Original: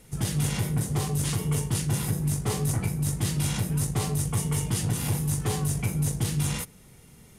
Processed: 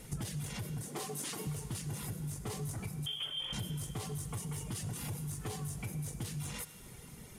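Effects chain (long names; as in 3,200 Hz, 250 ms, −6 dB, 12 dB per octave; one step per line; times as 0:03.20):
0:03.06–0:03.53: voice inversion scrambler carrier 3,300 Hz
in parallel at −2.5 dB: brickwall limiter −25.5 dBFS, peak gain reduction 10.5 dB
0:00.88–0:01.47: on the sum: high-pass filter 210 Hz 24 dB per octave
soft clipping −16.5 dBFS, distortion −21 dB
downward compressor 6 to 1, threshold −34 dBFS, peak gain reduction 12 dB
reverb reduction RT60 0.87 s
on a send at −8 dB: low-shelf EQ 420 Hz −11.5 dB + convolution reverb RT60 3.3 s, pre-delay 59 ms
on the sum: level −2 dB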